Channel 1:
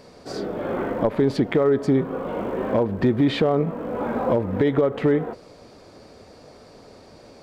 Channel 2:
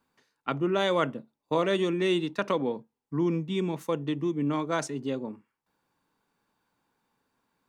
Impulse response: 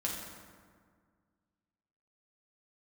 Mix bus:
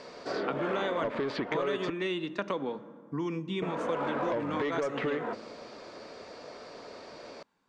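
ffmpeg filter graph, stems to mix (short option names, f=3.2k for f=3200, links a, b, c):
-filter_complex "[0:a]bandreject=f=790:w=12,asplit=2[a][b];[b]highpass=f=720:p=1,volume=15dB,asoftclip=type=tanh:threshold=-9dB[c];[a][c]amix=inputs=2:normalize=0,lowpass=f=4.1k:p=1,volume=-6dB,volume=-4dB,asplit=3[d][e][f];[d]atrim=end=1.9,asetpts=PTS-STARTPTS,afade=t=out:st=1.896:d=0.004:c=hsin[g];[e]atrim=start=1.9:end=3.62,asetpts=PTS-STARTPTS,volume=0[h];[f]atrim=start=3.62,asetpts=PTS-STARTPTS,afade=t=in:d=0.004:c=hsin[i];[g][h][i]concat=n=3:v=0:a=1[j];[1:a]volume=0dB,asplit=2[k][l];[l]volume=-17.5dB[m];[2:a]atrim=start_sample=2205[n];[m][n]afir=irnorm=-1:irlink=0[o];[j][k][o]amix=inputs=3:normalize=0,lowpass=f=7.8k:w=0.5412,lowpass=f=7.8k:w=1.3066,equalizer=f=65:w=0.56:g=-5.5,acrossover=split=810|3600[p][q][r];[p]acompressor=threshold=-32dB:ratio=4[s];[q]acompressor=threshold=-35dB:ratio=4[t];[r]acompressor=threshold=-56dB:ratio=4[u];[s][t][u]amix=inputs=3:normalize=0"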